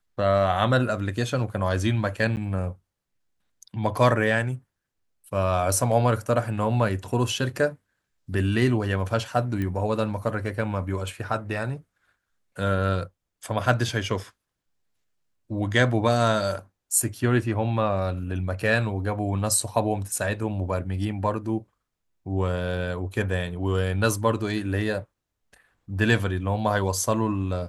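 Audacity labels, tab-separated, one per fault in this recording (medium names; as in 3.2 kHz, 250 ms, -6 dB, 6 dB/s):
2.360000	2.370000	dropout 9.4 ms
9.620000	9.620000	pop -18 dBFS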